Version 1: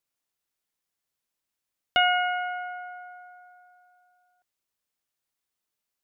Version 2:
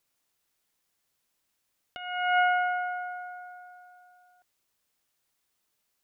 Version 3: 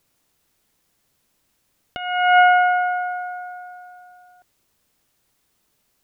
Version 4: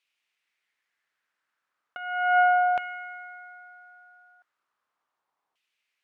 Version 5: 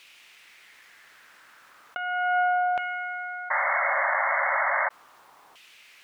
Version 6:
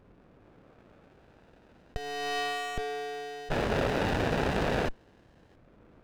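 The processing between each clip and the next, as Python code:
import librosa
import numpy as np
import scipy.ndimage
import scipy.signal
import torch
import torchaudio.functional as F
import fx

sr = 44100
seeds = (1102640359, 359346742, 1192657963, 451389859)

y1 = fx.over_compress(x, sr, threshold_db=-29.0, ratio=-0.5)
y1 = F.gain(torch.from_numpy(y1), 3.5).numpy()
y2 = fx.low_shelf(y1, sr, hz=470.0, db=9.0)
y2 = F.gain(torch.from_numpy(y2), 8.5).numpy()
y3 = fx.filter_lfo_bandpass(y2, sr, shape='saw_down', hz=0.36, low_hz=890.0, high_hz=2700.0, q=2.7)
y4 = fx.spec_paint(y3, sr, seeds[0], shape='noise', start_s=3.5, length_s=1.39, low_hz=540.0, high_hz=2200.0, level_db=-23.0)
y4 = fx.env_flatten(y4, sr, amount_pct=50)
y4 = F.gain(torch.from_numpy(y4), -4.0).numpy()
y5 = fx.freq_invert(y4, sr, carrier_hz=2600)
y5 = fx.running_max(y5, sr, window=33)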